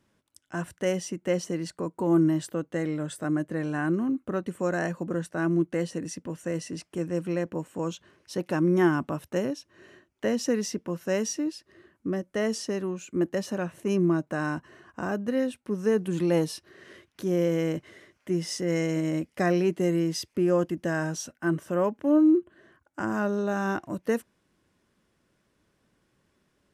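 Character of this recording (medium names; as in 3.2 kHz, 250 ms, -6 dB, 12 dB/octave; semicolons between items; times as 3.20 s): noise floor -73 dBFS; spectral tilt -6.0 dB/octave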